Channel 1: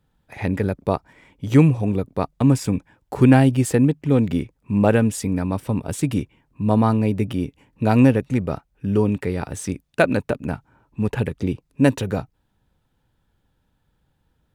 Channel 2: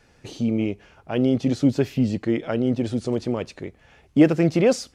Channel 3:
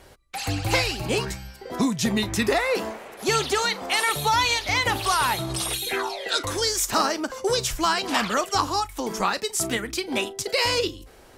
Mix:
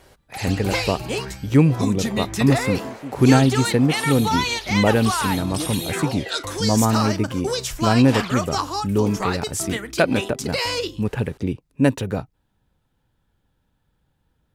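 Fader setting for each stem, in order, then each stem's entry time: -1.0 dB, -15.5 dB, -1.5 dB; 0.00 s, 1.40 s, 0.00 s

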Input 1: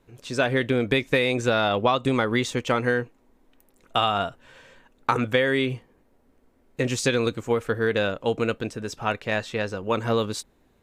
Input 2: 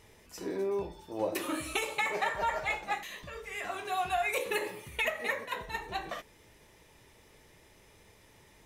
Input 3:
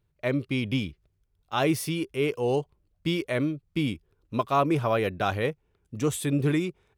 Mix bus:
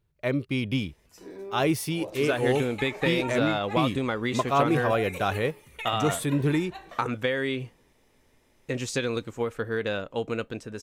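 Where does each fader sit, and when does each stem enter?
-5.5 dB, -7.0 dB, 0.0 dB; 1.90 s, 0.80 s, 0.00 s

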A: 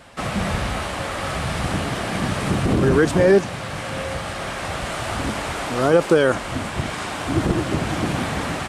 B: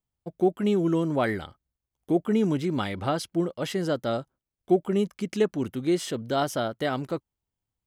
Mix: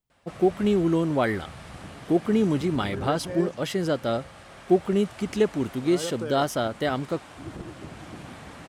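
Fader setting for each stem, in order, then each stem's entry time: -18.0 dB, +1.5 dB; 0.10 s, 0.00 s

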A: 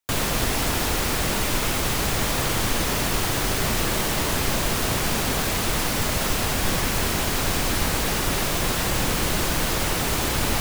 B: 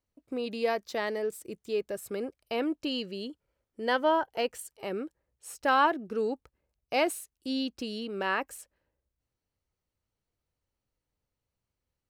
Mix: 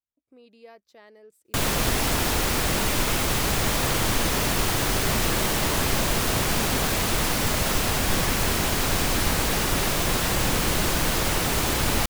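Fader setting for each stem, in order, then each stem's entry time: 0.0 dB, -19.0 dB; 1.45 s, 0.00 s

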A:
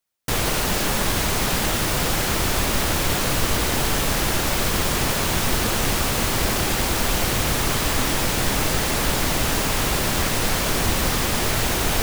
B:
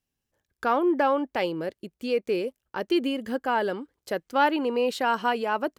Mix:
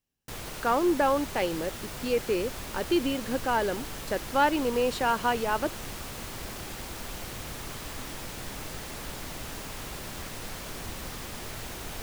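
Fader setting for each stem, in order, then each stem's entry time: -17.0 dB, -1.5 dB; 0.00 s, 0.00 s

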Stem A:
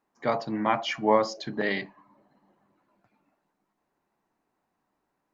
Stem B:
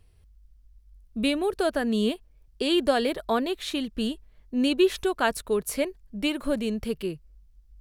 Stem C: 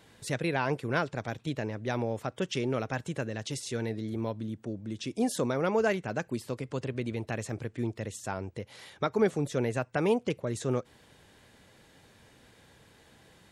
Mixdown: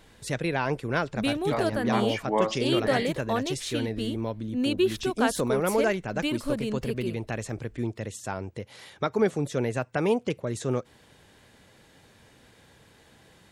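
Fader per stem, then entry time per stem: -4.0 dB, -3.0 dB, +2.0 dB; 1.25 s, 0.00 s, 0.00 s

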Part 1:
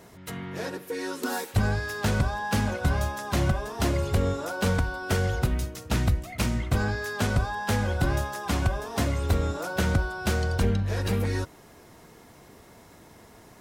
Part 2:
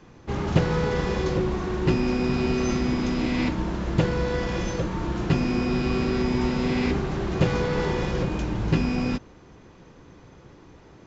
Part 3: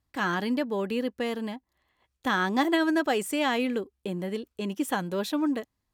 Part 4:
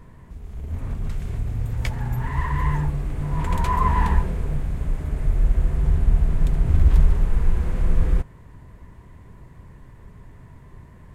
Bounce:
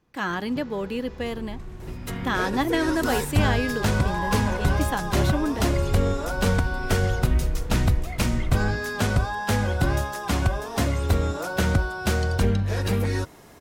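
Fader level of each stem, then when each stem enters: +2.5 dB, -18.5 dB, 0.0 dB, -11.5 dB; 1.80 s, 0.00 s, 0.00 s, 0.50 s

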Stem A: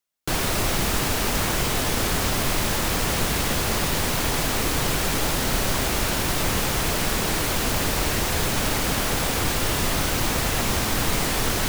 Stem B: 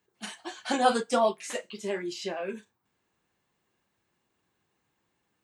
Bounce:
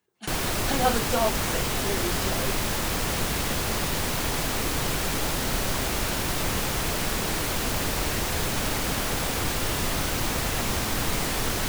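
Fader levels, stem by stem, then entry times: -3.5 dB, -1.0 dB; 0.00 s, 0.00 s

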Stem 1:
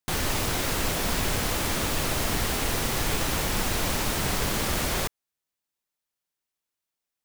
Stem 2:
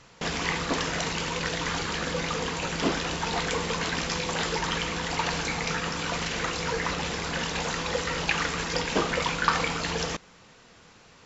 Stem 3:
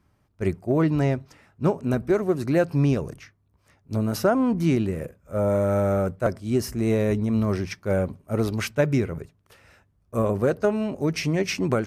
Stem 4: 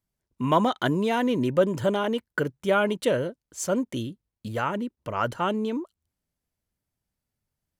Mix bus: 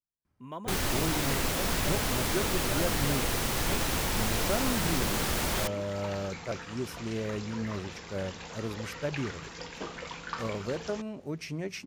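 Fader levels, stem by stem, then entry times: -3.0 dB, -13.5 dB, -12.0 dB, -19.5 dB; 0.60 s, 0.85 s, 0.25 s, 0.00 s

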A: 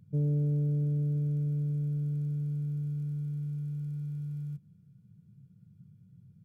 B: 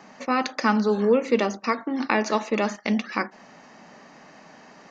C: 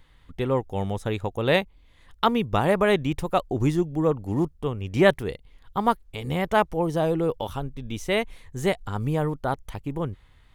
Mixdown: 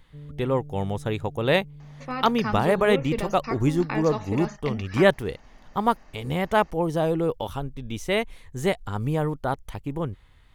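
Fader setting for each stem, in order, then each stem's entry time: -13.5 dB, -8.5 dB, 0.0 dB; 0.00 s, 1.80 s, 0.00 s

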